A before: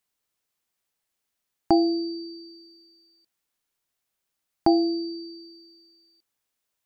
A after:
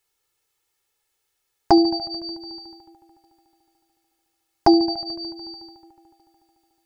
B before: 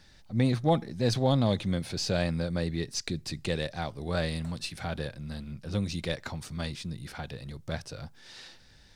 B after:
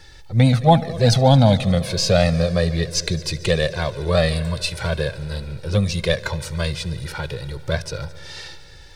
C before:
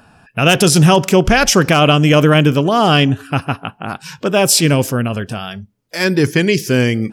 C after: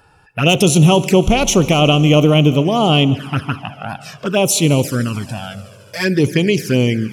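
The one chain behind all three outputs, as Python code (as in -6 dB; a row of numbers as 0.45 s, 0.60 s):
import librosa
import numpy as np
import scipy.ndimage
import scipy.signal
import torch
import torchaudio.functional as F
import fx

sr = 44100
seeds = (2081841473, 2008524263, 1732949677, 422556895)

y = fx.echo_heads(x, sr, ms=73, heads='all three', feedback_pct=72, wet_db=-24.0)
y = fx.env_flanger(y, sr, rest_ms=2.3, full_db=-9.0)
y = librosa.util.normalize(y) * 10.0 ** (-1.5 / 20.0)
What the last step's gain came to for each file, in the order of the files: +10.0 dB, +14.0 dB, 0.0 dB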